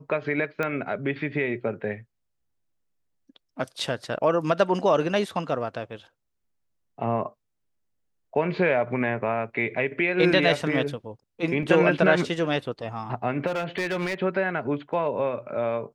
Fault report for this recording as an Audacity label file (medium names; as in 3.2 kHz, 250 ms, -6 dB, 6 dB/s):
0.630000	0.630000	pop -15 dBFS
11.630000	11.630000	dropout 2.2 ms
13.460000	14.150000	clipped -23 dBFS